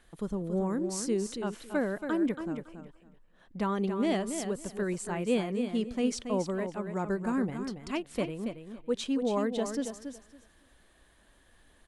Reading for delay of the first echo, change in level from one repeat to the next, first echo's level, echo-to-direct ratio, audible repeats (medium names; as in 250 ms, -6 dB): 279 ms, -14.5 dB, -8.0 dB, -8.0 dB, 2